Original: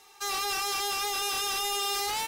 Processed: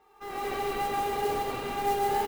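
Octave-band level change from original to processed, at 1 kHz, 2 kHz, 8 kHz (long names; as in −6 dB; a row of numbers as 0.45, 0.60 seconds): +3.5, −4.5, −14.0 decibels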